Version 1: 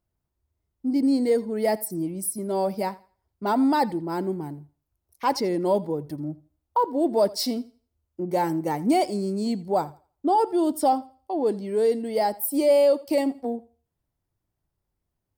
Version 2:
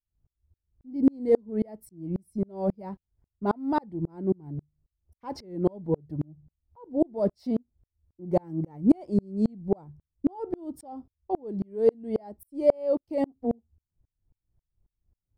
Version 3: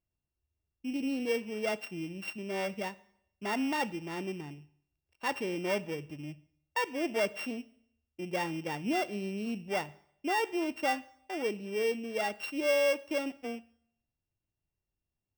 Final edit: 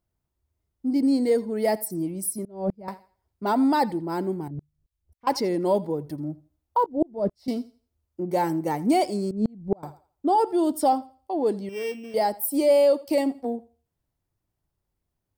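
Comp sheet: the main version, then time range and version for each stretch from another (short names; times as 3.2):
1
2.45–2.88 from 2
4.48–5.27 from 2
6.86–7.48 from 2
9.31–9.83 from 2
11.69–12.14 from 3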